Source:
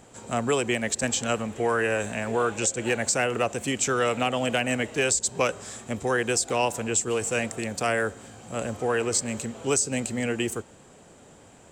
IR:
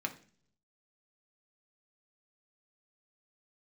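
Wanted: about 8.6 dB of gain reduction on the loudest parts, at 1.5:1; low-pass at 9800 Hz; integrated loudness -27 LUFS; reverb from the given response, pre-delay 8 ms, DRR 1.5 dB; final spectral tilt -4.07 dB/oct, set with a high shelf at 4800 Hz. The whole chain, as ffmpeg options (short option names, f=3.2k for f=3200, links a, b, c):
-filter_complex "[0:a]lowpass=9.8k,highshelf=f=4.8k:g=-7,acompressor=threshold=-45dB:ratio=1.5,asplit=2[a][b];[1:a]atrim=start_sample=2205,adelay=8[c];[b][c]afir=irnorm=-1:irlink=0,volume=-4dB[d];[a][d]amix=inputs=2:normalize=0,volume=6dB"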